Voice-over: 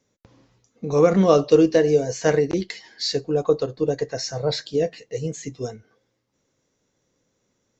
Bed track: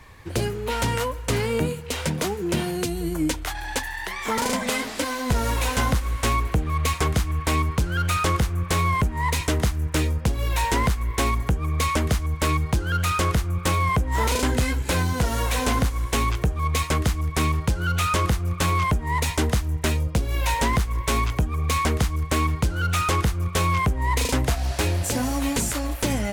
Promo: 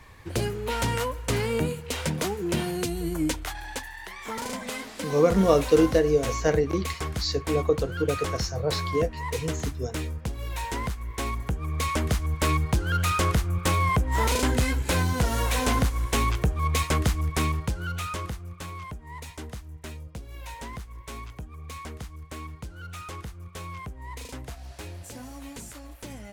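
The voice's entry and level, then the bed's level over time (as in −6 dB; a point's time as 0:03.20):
4.20 s, −4.0 dB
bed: 0:03.33 −2.5 dB
0:03.91 −9 dB
0:11.03 −9 dB
0:12.38 −1.5 dB
0:17.27 −1.5 dB
0:18.73 −16.5 dB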